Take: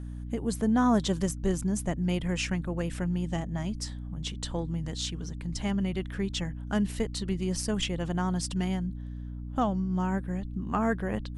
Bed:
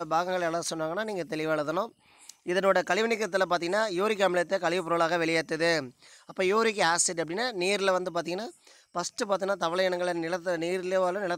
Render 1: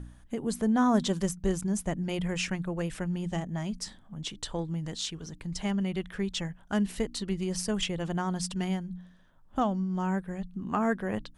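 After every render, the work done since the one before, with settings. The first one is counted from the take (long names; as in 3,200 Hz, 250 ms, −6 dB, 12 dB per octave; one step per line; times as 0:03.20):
hum removal 60 Hz, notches 5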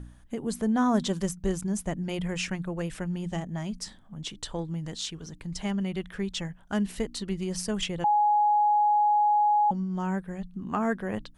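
0:08.04–0:09.71: beep over 835 Hz −19 dBFS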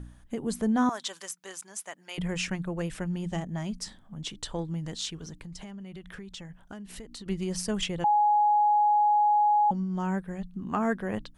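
0:00.89–0:02.18: high-pass filter 1,000 Hz
0:05.32–0:07.26: downward compressor 16 to 1, threshold −38 dBFS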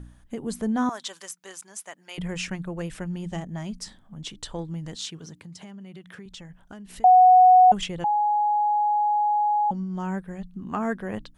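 0:04.96–0:06.26: high-pass filter 100 Hz 24 dB per octave
0:07.04–0:07.72: beep over 737 Hz −10 dBFS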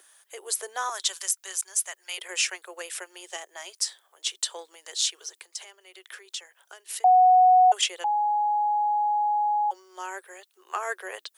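Chebyshev high-pass filter 370 Hz, order 6
spectral tilt +4.5 dB per octave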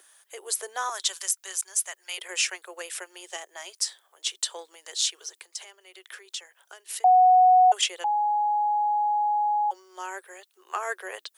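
no processing that can be heard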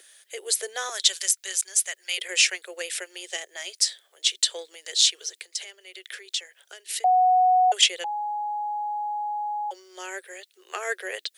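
octave-band graphic EQ 500/1,000/2,000/4,000/8,000 Hz +7/−11/+7/+7/+3 dB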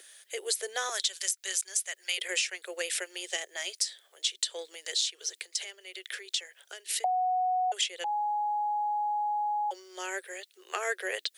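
downward compressor 16 to 1, threshold −26 dBFS, peak gain reduction 14 dB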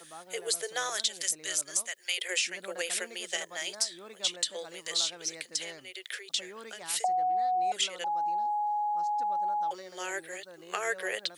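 mix in bed −21 dB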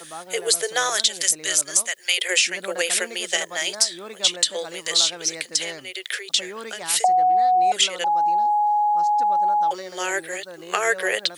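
level +10.5 dB
brickwall limiter −1 dBFS, peak gain reduction 1 dB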